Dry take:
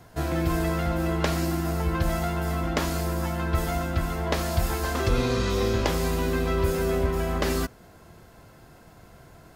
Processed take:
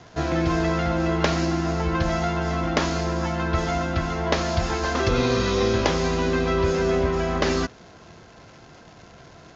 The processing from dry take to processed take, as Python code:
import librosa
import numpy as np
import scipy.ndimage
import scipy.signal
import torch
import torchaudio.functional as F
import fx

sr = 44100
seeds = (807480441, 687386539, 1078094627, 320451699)

y = fx.dmg_crackle(x, sr, seeds[0], per_s=410.0, level_db=-43.0)
y = scipy.signal.sosfilt(scipy.signal.butter(16, 6900.0, 'lowpass', fs=sr, output='sos'), y)
y = fx.low_shelf(y, sr, hz=70.0, db=-10.5)
y = F.gain(torch.from_numpy(y), 4.5).numpy()